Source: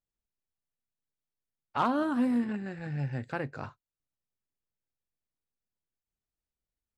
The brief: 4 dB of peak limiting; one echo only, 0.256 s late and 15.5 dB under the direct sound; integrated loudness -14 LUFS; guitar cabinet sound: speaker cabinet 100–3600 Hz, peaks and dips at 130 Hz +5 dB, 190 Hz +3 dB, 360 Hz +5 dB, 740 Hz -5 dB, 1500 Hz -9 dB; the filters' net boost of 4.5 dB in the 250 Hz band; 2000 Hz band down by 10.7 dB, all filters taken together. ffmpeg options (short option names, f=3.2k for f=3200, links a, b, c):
-af "equalizer=f=250:t=o:g=3.5,equalizer=f=2k:t=o:g=-7,alimiter=limit=-20.5dB:level=0:latency=1,highpass=100,equalizer=f=130:t=q:w=4:g=5,equalizer=f=190:t=q:w=4:g=3,equalizer=f=360:t=q:w=4:g=5,equalizer=f=740:t=q:w=4:g=-5,equalizer=f=1.5k:t=q:w=4:g=-9,lowpass=f=3.6k:w=0.5412,lowpass=f=3.6k:w=1.3066,aecho=1:1:256:0.168,volume=15dB"